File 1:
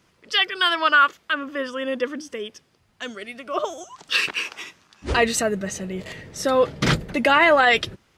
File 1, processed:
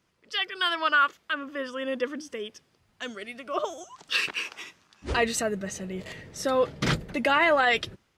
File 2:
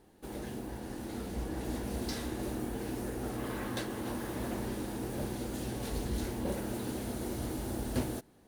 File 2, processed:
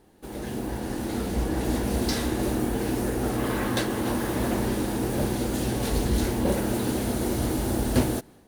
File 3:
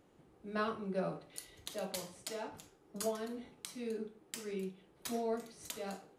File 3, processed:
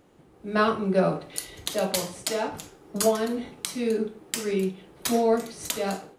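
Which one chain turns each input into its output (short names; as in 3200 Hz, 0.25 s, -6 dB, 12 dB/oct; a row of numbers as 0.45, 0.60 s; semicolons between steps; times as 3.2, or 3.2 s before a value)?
AGC gain up to 7 dB; match loudness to -27 LUFS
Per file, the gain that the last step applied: -10.0, +3.5, +7.5 dB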